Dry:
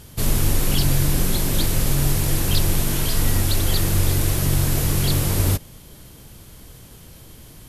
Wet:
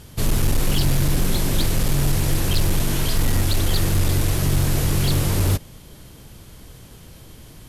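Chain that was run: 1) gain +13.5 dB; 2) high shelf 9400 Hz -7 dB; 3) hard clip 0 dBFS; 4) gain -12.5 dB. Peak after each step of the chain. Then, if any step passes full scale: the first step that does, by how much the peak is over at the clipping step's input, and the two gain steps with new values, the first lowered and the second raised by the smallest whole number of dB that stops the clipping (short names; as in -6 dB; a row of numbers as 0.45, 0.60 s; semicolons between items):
+8.0, +7.5, 0.0, -12.5 dBFS; step 1, 7.5 dB; step 1 +5.5 dB, step 4 -4.5 dB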